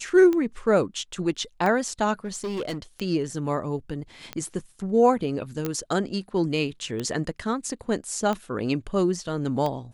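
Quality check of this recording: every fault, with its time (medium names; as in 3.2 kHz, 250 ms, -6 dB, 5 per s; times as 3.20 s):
tick 45 rpm -16 dBFS
2.24–2.78 s: clipped -26 dBFS
5.65 s: pop -14 dBFS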